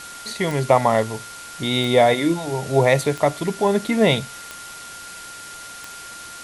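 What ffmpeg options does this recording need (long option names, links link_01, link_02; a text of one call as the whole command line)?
ffmpeg -i in.wav -af "adeclick=threshold=4,bandreject=frequency=1400:width=30,afwtdn=0.014" out.wav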